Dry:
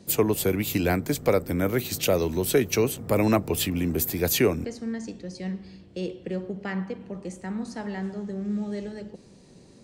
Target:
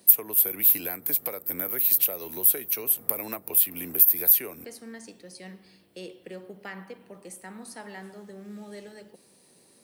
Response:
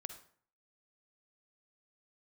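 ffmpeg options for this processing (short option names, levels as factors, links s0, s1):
-af "highpass=f=720:p=1,acompressor=threshold=0.0282:ratio=12,aexciter=amount=11.7:drive=5:freq=9700,volume=0.794"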